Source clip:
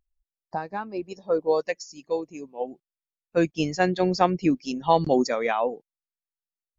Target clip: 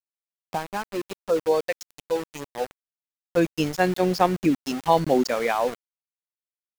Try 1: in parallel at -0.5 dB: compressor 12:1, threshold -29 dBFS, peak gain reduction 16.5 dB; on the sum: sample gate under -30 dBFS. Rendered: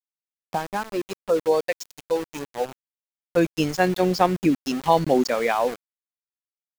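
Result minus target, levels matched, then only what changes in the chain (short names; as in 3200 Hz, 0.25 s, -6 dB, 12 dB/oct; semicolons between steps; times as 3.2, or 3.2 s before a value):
compressor: peak gain reduction -8 dB
change: compressor 12:1, threshold -37.5 dBFS, peak gain reduction 24.5 dB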